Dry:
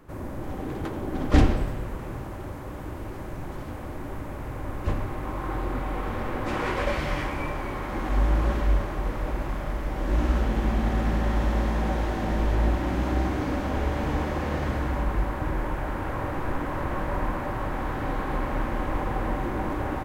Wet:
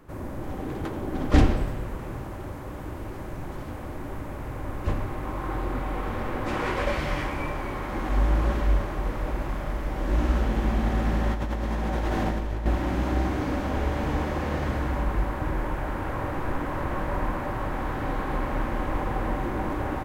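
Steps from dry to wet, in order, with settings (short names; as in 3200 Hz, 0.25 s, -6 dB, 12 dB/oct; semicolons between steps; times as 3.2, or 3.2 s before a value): 11.31–12.66 negative-ratio compressor -27 dBFS, ratio -1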